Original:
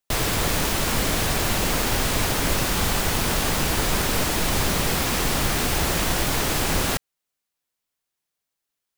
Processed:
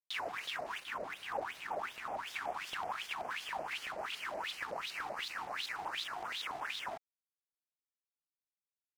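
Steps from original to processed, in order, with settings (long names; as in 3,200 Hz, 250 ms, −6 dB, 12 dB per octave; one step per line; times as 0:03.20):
0:00.80–0:02.27: high-shelf EQ 2,200 Hz −11 dB
brickwall limiter −16.5 dBFS, peak gain reduction 6.5 dB
LFO wah 2.7 Hz 660–3,700 Hz, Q 8.6
dead-zone distortion −58 dBFS
auto-filter notch square 5.3 Hz 550–3,700 Hz
pitch modulation by a square or saw wave saw up 5.1 Hz, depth 250 cents
level +4 dB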